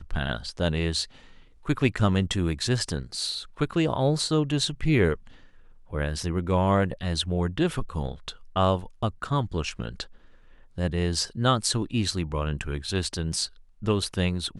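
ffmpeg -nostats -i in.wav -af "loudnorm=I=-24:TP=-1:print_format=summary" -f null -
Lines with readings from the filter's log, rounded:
Input Integrated:    -27.2 LUFS
Input True Peak:      -8.1 dBTP
Input LRA:             2.6 LU
Input Threshold:     -37.5 LUFS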